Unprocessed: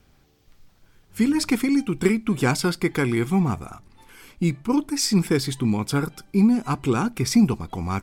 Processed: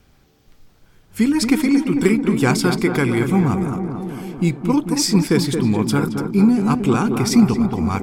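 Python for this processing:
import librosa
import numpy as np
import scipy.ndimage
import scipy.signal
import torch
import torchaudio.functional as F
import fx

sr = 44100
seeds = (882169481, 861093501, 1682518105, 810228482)

y = fx.echo_tape(x, sr, ms=222, feedback_pct=83, wet_db=-4.5, lp_hz=1300.0, drive_db=6.0, wow_cents=21)
y = F.gain(torch.from_numpy(y), 3.5).numpy()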